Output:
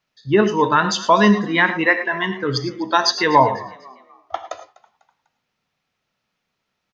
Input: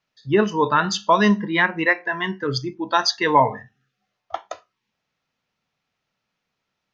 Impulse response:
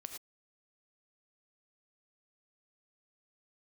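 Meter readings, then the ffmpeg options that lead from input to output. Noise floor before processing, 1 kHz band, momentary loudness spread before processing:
-80 dBFS, +2.5 dB, 17 LU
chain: -filter_complex "[0:a]asplit=4[a][b][c][d];[b]adelay=248,afreqshift=61,volume=-21.5dB[e];[c]adelay=496,afreqshift=122,volume=-29.5dB[f];[d]adelay=744,afreqshift=183,volume=-37.4dB[g];[a][e][f][g]amix=inputs=4:normalize=0,asplit=2[h][i];[1:a]atrim=start_sample=2205[j];[i][j]afir=irnorm=-1:irlink=0,volume=4.5dB[k];[h][k]amix=inputs=2:normalize=0,volume=-3.5dB"

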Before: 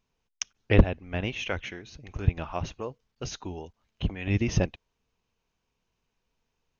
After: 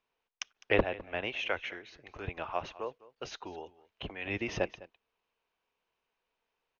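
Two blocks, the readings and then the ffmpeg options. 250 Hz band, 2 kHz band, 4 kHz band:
-10.5 dB, -0.5 dB, -3.0 dB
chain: -filter_complex "[0:a]acrossover=split=370 4100:gain=0.126 1 0.158[a][b][c];[a][b][c]amix=inputs=3:normalize=0,aecho=1:1:206:0.106"

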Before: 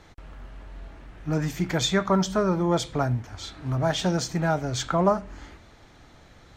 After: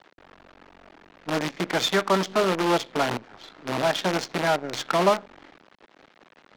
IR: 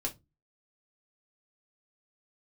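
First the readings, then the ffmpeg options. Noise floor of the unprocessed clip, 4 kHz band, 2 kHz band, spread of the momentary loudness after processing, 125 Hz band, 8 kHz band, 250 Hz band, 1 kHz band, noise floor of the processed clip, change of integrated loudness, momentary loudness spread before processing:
-53 dBFS, +2.5 dB, +5.0 dB, 8 LU, -8.5 dB, -2.0 dB, -2.5 dB, +3.0 dB, -59 dBFS, +0.5 dB, 21 LU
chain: -filter_complex "[0:a]acrusher=bits=5:dc=4:mix=0:aa=0.000001,acrossover=split=210 6600:gain=0.0891 1 0.2[a][b][c];[a][b][c]amix=inputs=3:normalize=0,adynamicsmooth=sensitivity=7:basefreq=3.1k,volume=2dB"

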